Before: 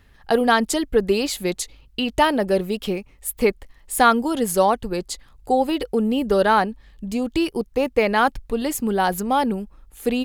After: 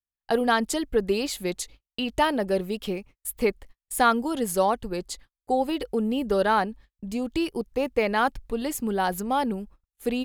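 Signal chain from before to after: gate -40 dBFS, range -44 dB; trim -5 dB

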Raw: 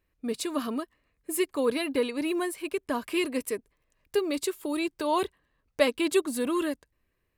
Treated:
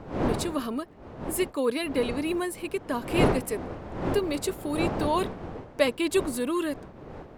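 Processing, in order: wind noise 510 Hz -33 dBFS

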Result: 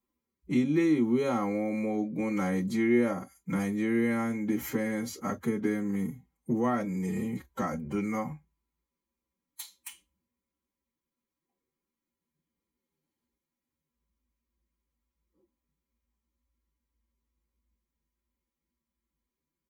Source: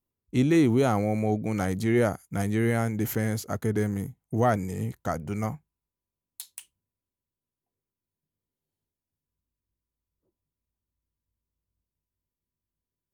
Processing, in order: comb 3.7 ms, depth 43%; compression 2.5:1, threshold -32 dBFS, peak gain reduction 11 dB; time stretch by phase-locked vocoder 1.5×; reverberation, pre-delay 3 ms, DRR 11 dB; trim -2.5 dB

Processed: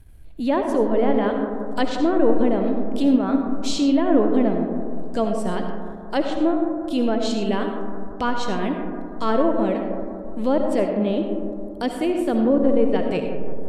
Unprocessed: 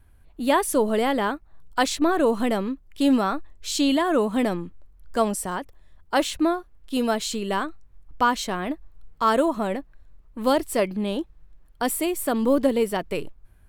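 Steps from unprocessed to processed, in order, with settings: transient shaper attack -4 dB, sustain -8 dB; peaking EQ 1.2 kHz -9 dB 1.4 oct; in parallel at -2 dB: compression, threshold -37 dBFS, peak gain reduction 18.5 dB; on the sum: low-pass that closes with the level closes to 1.5 kHz, closed at -19.5 dBFS; on a send: bucket-brigade echo 174 ms, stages 2048, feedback 65%, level -11.5 dB; on the sum: algorithmic reverb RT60 1.5 s, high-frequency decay 0.3×, pre-delay 35 ms, DRR 4.5 dB; trim +3 dB

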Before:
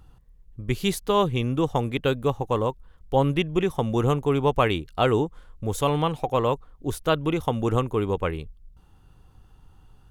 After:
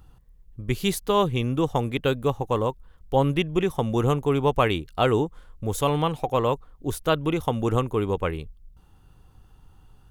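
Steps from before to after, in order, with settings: treble shelf 12 kHz +5.5 dB

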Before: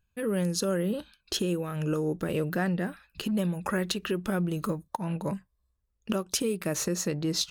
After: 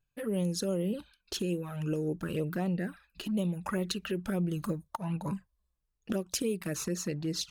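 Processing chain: touch-sensitive flanger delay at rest 7 ms, full sweep at -23.5 dBFS; gain riding 2 s; trim -2.5 dB

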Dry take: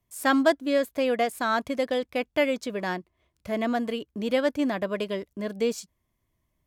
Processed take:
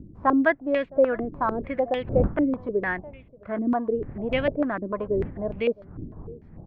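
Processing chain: wind noise 160 Hz -35 dBFS; distance through air 190 m; on a send: delay 663 ms -23 dB; on the sum: step-sequenced low-pass 6.7 Hz 310–2600 Hz; trim -2 dB

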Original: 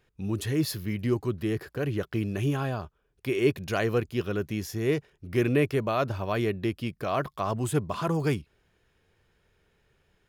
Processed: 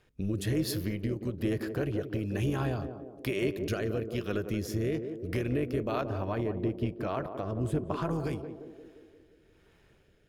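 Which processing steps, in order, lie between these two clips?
6.01–8.11 s: treble shelf 2.2 kHz -11.5 dB; compression, threshold -32 dBFS, peak gain reduction 13.5 dB; AM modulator 200 Hz, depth 40%; rotary cabinet horn 1.1 Hz; band-passed feedback delay 176 ms, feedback 63%, band-pass 400 Hz, level -6 dB; reverberation RT60 0.30 s, pre-delay 3 ms, DRR 19.5 dB; trim +7.5 dB

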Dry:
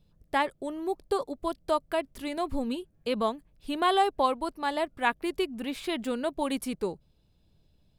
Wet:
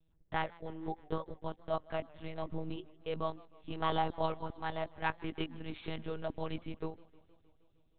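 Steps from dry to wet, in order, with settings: monotone LPC vocoder at 8 kHz 160 Hz; modulated delay 156 ms, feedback 69%, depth 108 cents, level -23.5 dB; trim -8 dB

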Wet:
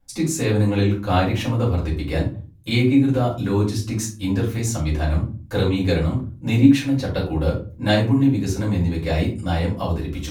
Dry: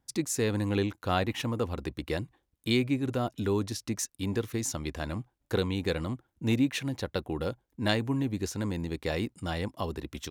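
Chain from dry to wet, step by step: bass shelf 110 Hz +7 dB; reverberation RT60 0.35 s, pre-delay 4 ms, DRR -7.5 dB; trim -3 dB

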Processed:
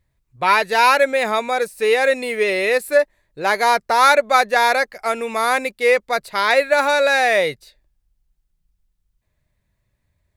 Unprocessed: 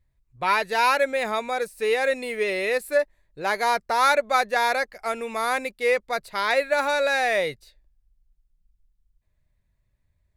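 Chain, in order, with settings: bass shelf 61 Hz -11.5 dB; trim +6.5 dB

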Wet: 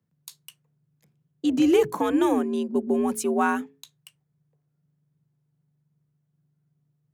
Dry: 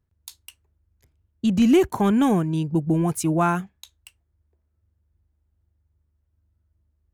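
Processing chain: hum notches 50/100/150/200/250/300/350 Hz; frequency shift +73 Hz; trim -2 dB

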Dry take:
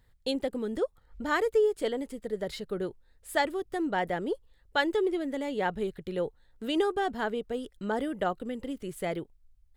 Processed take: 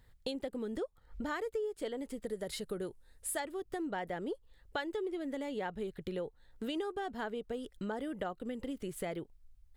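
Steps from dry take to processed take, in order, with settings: 2.26–3.40 s: peaking EQ 10 kHz +11.5 dB 0.98 oct; compression 4:1, threshold -38 dBFS, peak gain reduction 14.5 dB; trim +1.5 dB

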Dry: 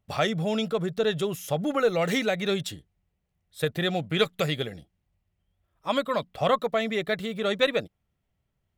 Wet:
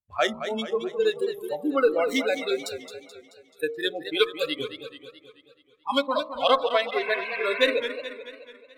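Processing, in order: local Wiener filter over 9 samples; 3.68–4.60 s: bass shelf 140 Hz -4 dB; 7.01–7.72 s: painted sound noise 960–2700 Hz -33 dBFS; on a send: feedback echo behind a high-pass 273 ms, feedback 78%, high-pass 1.7 kHz, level -20 dB; 5.93–6.81 s: on the sum: dynamic bell 3.7 kHz, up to +8 dB, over -46 dBFS, Q 0.91; spectral noise reduction 26 dB; de-hum 57.81 Hz, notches 23; modulated delay 216 ms, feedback 53%, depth 143 cents, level -10 dB; trim +3 dB

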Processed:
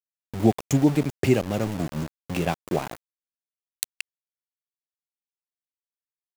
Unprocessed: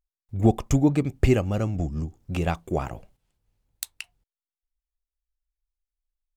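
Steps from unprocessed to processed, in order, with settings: high-pass 120 Hz 24 dB/octave; peaking EQ 1.3 kHz -8 dB 0.25 oct; in parallel at -2 dB: compression 16:1, threshold -33 dBFS, peak gain reduction 20.5 dB; on the sum: small samples zeroed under -29.5 dBFS

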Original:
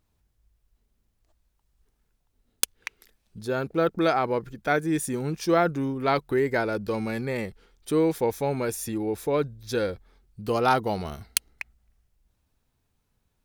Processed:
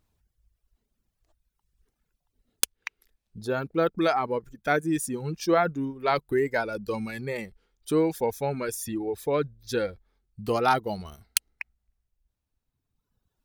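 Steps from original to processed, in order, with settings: reverb removal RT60 2 s

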